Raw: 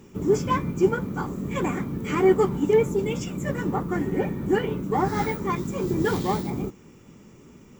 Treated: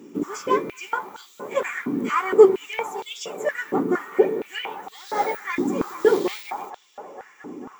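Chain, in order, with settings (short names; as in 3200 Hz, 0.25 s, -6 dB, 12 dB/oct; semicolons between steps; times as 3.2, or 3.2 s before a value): dark delay 0.224 s, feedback 84%, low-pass 1500 Hz, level -16 dB; stepped high-pass 4.3 Hz 280–3600 Hz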